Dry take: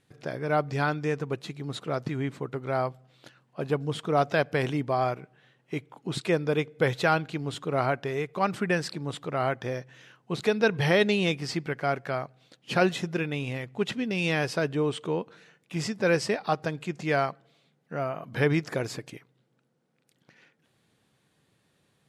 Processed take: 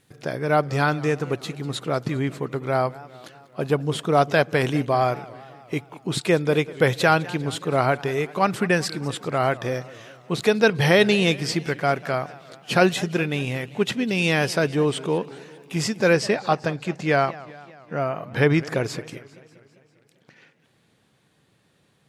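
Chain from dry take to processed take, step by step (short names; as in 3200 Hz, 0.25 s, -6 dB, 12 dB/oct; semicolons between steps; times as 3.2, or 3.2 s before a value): high shelf 8600 Hz +9 dB, from 16.13 s -3.5 dB; warbling echo 0.199 s, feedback 61%, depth 209 cents, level -19.5 dB; gain +5.5 dB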